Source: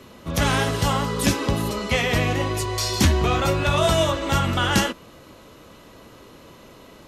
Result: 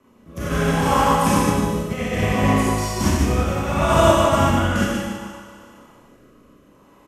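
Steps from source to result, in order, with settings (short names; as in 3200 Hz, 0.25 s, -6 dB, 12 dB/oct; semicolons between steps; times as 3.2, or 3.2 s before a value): fifteen-band EQ 250 Hz +5 dB, 1000 Hz +7 dB, 4000 Hz -10 dB; echo 0.15 s -7.5 dB; reverb RT60 1.9 s, pre-delay 30 ms, DRR -7.5 dB; rotary speaker horn 0.65 Hz; upward expander 1.5:1, over -28 dBFS; gain -3 dB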